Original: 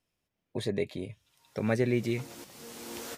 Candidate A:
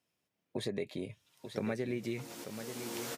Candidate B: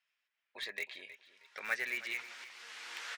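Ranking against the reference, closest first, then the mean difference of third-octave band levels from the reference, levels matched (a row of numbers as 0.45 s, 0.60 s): A, B; 5.0 dB, 12.0 dB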